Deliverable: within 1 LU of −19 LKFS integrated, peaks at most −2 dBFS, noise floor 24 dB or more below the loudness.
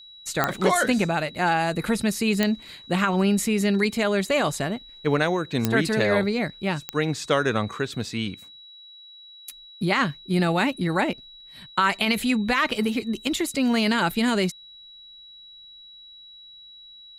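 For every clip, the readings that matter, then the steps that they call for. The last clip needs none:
number of clicks 4; interfering tone 3,900 Hz; level of the tone −44 dBFS; integrated loudness −24.0 LKFS; sample peak −4.5 dBFS; target loudness −19.0 LKFS
→ click removal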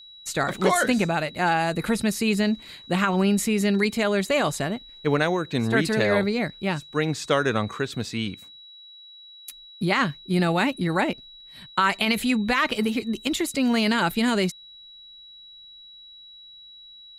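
number of clicks 0; interfering tone 3,900 Hz; level of the tone −44 dBFS
→ notch filter 3,900 Hz, Q 30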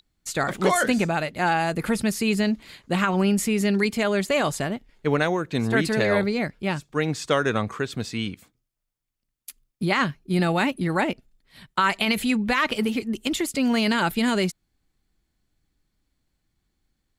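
interfering tone none found; integrated loudness −24.0 LKFS; sample peak −6.0 dBFS; target loudness −19.0 LKFS
→ level +5 dB
brickwall limiter −2 dBFS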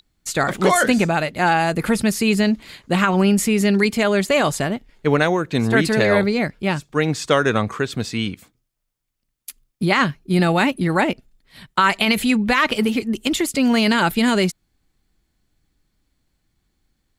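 integrated loudness −19.0 LKFS; sample peak −2.0 dBFS; background noise floor −74 dBFS

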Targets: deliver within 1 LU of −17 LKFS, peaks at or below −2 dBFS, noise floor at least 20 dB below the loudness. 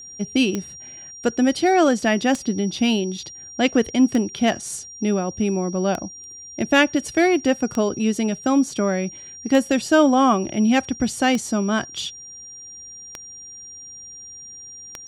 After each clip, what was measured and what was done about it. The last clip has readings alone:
number of clicks 9; interfering tone 5,700 Hz; level of the tone −37 dBFS; integrated loudness −20.5 LKFS; sample peak −3.0 dBFS; target loudness −17.0 LKFS
→ click removal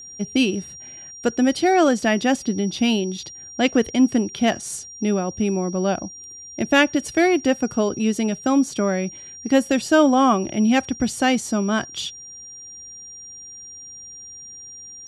number of clicks 0; interfering tone 5,700 Hz; level of the tone −37 dBFS
→ notch filter 5,700 Hz, Q 30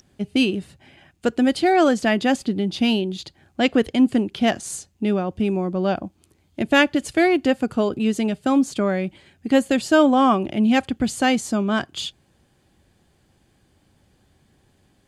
interfering tone none found; integrated loudness −20.5 LKFS; sample peak −3.0 dBFS; target loudness −17.0 LKFS
→ level +3.5 dB
brickwall limiter −2 dBFS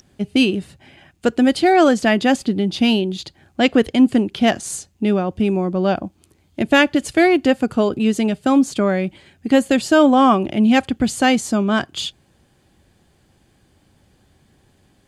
integrated loudness −17.5 LKFS; sample peak −2.0 dBFS; background noise floor −59 dBFS

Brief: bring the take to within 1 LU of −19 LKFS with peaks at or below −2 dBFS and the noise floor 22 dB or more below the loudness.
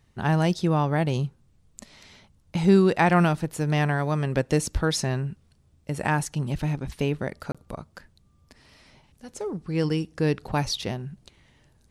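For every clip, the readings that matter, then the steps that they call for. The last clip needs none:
number of dropouts 1; longest dropout 26 ms; integrated loudness −25.0 LKFS; sample peak −7.5 dBFS; target loudness −19.0 LKFS
→ repair the gap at 0:07.52, 26 ms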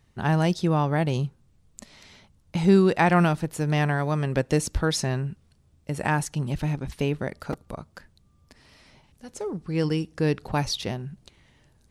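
number of dropouts 0; integrated loudness −25.5 LKFS; sample peak −7.5 dBFS; target loudness −19.0 LKFS
→ level +6.5 dB
brickwall limiter −2 dBFS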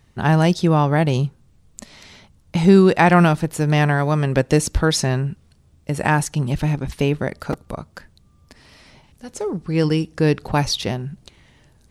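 integrated loudness −19.0 LKFS; sample peak −2.0 dBFS; background noise floor −56 dBFS

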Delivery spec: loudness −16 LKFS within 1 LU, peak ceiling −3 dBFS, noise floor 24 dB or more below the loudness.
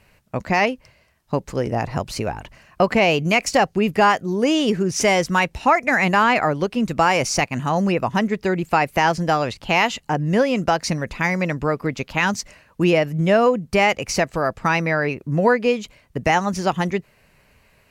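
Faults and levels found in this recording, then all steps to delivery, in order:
integrated loudness −20.0 LKFS; sample peak −5.5 dBFS; target loudness −16.0 LKFS
→ level +4 dB
brickwall limiter −3 dBFS

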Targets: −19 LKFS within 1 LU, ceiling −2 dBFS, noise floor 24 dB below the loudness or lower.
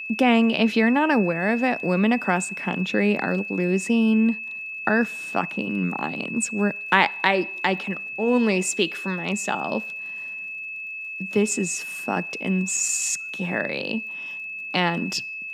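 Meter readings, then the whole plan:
crackle rate 56 per second; interfering tone 2,600 Hz; level of the tone −31 dBFS; integrated loudness −23.5 LKFS; sample peak −1.5 dBFS; target loudness −19.0 LKFS
→ click removal
notch filter 2,600 Hz, Q 30
level +4.5 dB
brickwall limiter −2 dBFS

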